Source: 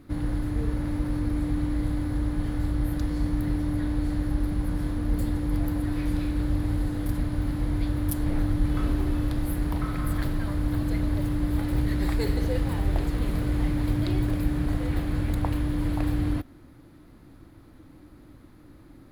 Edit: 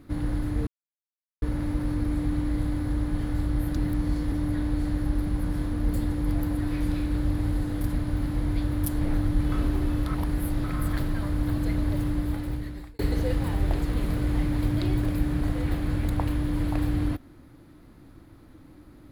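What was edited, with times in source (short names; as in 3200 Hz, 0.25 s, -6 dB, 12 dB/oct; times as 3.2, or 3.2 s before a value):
0.67 insert silence 0.75 s
3.02–3.57 reverse
9.32–9.89 reverse
11.33–12.24 fade out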